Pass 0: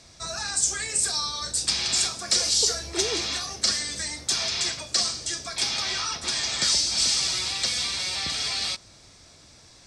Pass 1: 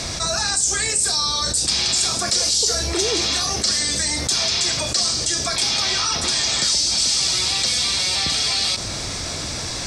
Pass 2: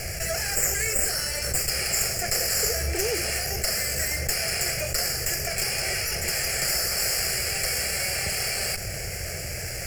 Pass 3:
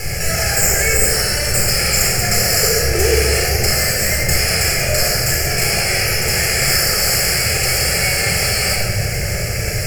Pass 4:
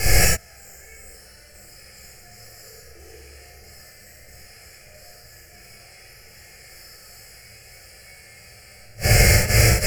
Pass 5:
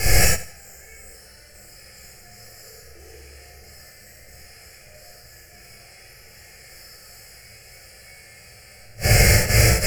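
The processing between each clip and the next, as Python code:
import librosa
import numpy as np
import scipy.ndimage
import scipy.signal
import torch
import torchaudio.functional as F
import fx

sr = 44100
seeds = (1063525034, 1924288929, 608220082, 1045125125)

y1 = fx.dynamic_eq(x, sr, hz=1800.0, q=0.73, threshold_db=-38.0, ratio=4.0, max_db=-4)
y1 = fx.env_flatten(y1, sr, amount_pct=70)
y1 = y1 * librosa.db_to_amplitude(2.0)
y2 = fx.lower_of_two(y1, sr, delay_ms=0.41)
y2 = fx.fixed_phaser(y2, sr, hz=1000.0, stages=6)
y3 = fx.room_shoebox(y2, sr, seeds[0], volume_m3=1800.0, walls='mixed', distance_m=4.1)
y3 = y3 * librosa.db_to_amplitude(4.0)
y4 = fx.gate_flip(y3, sr, shuts_db=-8.0, range_db=-36)
y4 = fx.rev_gated(y4, sr, seeds[1], gate_ms=130, shape='flat', drr_db=-5.5)
y5 = fx.echo_feedback(y4, sr, ms=84, feedback_pct=35, wet_db=-16.0)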